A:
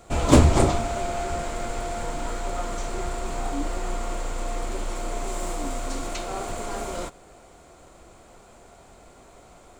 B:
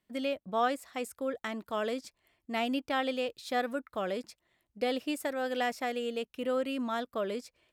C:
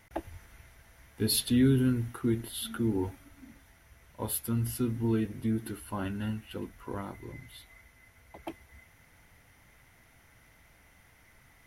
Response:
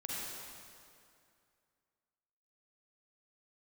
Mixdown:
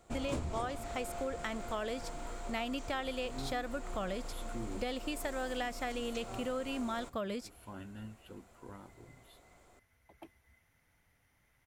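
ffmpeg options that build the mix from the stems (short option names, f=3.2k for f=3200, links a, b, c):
-filter_complex "[0:a]volume=-13dB[a];[1:a]asubboost=boost=11:cutoff=100,volume=1dB,asplit=2[b][c];[2:a]adelay=1750,volume=-12.5dB[d];[c]apad=whole_len=591603[e];[d][e]sidechaincompress=threshold=-49dB:ratio=8:attack=16:release=194[f];[a][b][f]amix=inputs=3:normalize=0,acompressor=threshold=-33dB:ratio=6"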